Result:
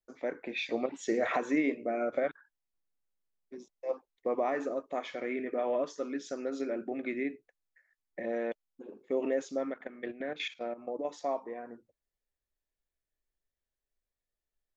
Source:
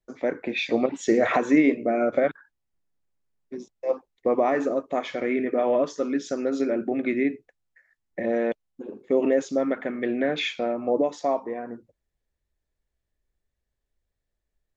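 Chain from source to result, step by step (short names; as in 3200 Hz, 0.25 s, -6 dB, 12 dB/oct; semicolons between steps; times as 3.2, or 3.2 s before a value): bell 80 Hz -8.5 dB 3 oct; 9.7–11.05 level quantiser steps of 14 dB; gain -7.5 dB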